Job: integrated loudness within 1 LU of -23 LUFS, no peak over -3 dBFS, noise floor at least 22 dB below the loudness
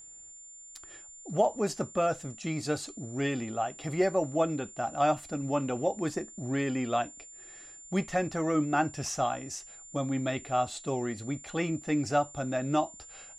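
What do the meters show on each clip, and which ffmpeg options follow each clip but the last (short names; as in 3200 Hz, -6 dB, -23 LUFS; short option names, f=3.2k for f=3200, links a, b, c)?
steady tone 7200 Hz; tone level -47 dBFS; loudness -31.0 LUFS; peak -13.0 dBFS; loudness target -23.0 LUFS
-> -af "bandreject=f=7.2k:w=30"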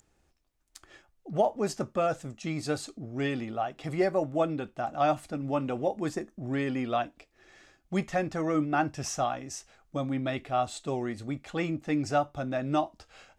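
steady tone none; loudness -31.0 LUFS; peak -13.0 dBFS; loudness target -23.0 LUFS
-> -af "volume=8dB"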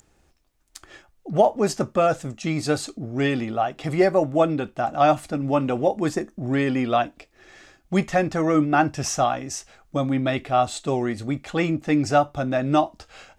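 loudness -23.0 LUFS; peak -5.0 dBFS; noise floor -63 dBFS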